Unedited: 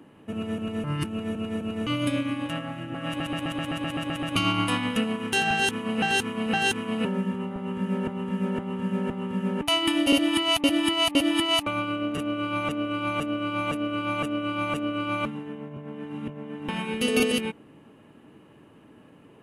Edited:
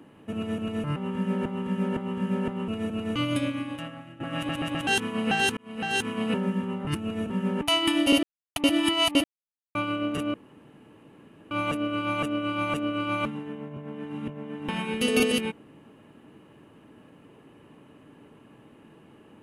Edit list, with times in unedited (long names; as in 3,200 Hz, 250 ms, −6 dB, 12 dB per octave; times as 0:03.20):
0:00.96–0:01.39: swap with 0:07.58–0:09.30
0:01.96–0:02.91: fade out, to −13 dB
0:03.58–0:05.58: remove
0:06.28–0:06.81: fade in
0:10.23–0:10.56: silence
0:11.24–0:11.75: silence
0:12.34–0:13.51: fill with room tone